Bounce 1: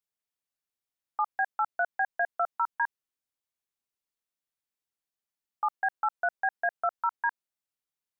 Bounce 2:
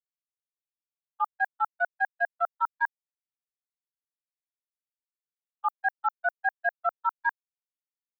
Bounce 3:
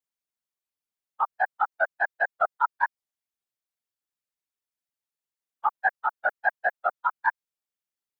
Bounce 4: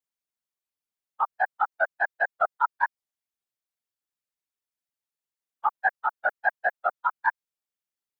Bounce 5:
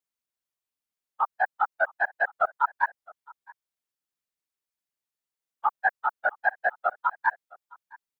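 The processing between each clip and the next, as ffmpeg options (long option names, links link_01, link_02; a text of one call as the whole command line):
ffmpeg -i in.wav -af "agate=range=-44dB:threshold=-26dB:ratio=16:detection=peak,aemphasis=mode=production:type=bsi,volume=4dB" out.wav
ffmpeg -i in.wav -af "afftfilt=real='hypot(re,im)*cos(2*PI*random(0))':imag='hypot(re,im)*sin(2*PI*random(1))':win_size=512:overlap=0.75,volume=8.5dB" out.wav
ffmpeg -i in.wav -af anull out.wav
ffmpeg -i in.wav -af "aecho=1:1:663:0.0631" out.wav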